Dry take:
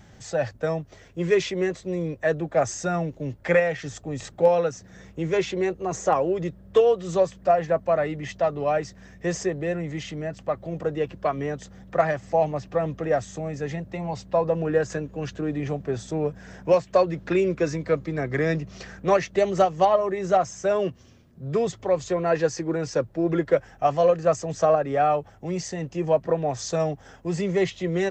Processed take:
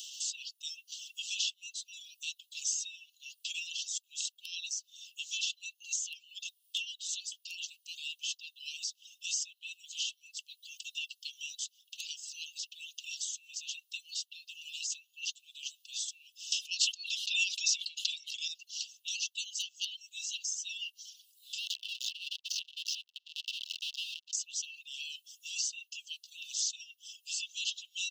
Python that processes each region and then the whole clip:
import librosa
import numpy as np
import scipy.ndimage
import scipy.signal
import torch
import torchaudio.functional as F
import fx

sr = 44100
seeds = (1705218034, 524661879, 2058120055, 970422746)

y = fx.chain(x, sr, fx.steep_highpass(hz=640.0, slope=96),
    fx.air_absorb(metres=68.0),
    fx.env_flatten(amount_pct=100), at=(16.52, 18.48))
y = fx.chain(y, sr, fx.clip_1bit(),
    fx.air_absorb(metres=260.0),
    fx.transformer_sat(knee_hz=300.0), at=(21.58, 24.33))
y = fx.dereverb_blind(y, sr, rt60_s=0.65)
y = scipy.signal.sosfilt(scipy.signal.cheby1(10, 1.0, 2700.0, 'highpass', fs=sr, output='sos'), y)
y = fx.band_squash(y, sr, depth_pct=70)
y = y * 10.0 ** (6.5 / 20.0)